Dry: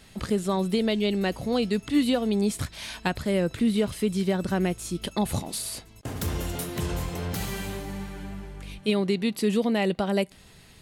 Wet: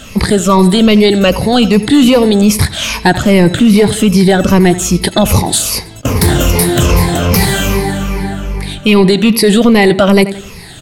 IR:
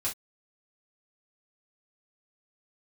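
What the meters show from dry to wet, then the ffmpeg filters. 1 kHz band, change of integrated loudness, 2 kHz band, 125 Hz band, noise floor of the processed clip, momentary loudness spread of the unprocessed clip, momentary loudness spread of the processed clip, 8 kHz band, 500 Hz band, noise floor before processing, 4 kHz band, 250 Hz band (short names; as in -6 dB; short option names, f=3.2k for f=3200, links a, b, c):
+18.0 dB, +17.5 dB, +18.5 dB, +19.0 dB, -30 dBFS, 10 LU, 8 LU, +20.0 dB, +16.5 dB, -52 dBFS, +18.5 dB, +17.0 dB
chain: -filter_complex "[0:a]afftfilt=real='re*pow(10,12/40*sin(2*PI*(0.85*log(max(b,1)*sr/1024/100)/log(2)-(-2.5)*(pts-256)/sr)))':imag='im*pow(10,12/40*sin(2*PI*(0.85*log(max(b,1)*sr/1024/100)/log(2)-(-2.5)*(pts-256)/sr)))':win_size=1024:overlap=0.75,asplit=2[a][b];[b]adelay=86,lowpass=f=4.2k:p=1,volume=-18dB,asplit=2[c][d];[d]adelay=86,lowpass=f=4.2k:p=1,volume=0.42,asplit=2[e][f];[f]adelay=86,lowpass=f=4.2k:p=1,volume=0.42[g];[a][c][e][g]amix=inputs=4:normalize=0,apsyclip=21dB,volume=-2dB"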